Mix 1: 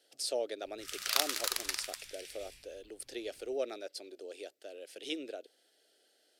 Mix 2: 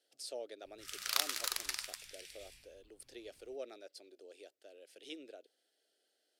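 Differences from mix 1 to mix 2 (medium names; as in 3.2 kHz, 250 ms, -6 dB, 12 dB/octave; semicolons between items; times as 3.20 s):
speech -9.5 dB; background -3.0 dB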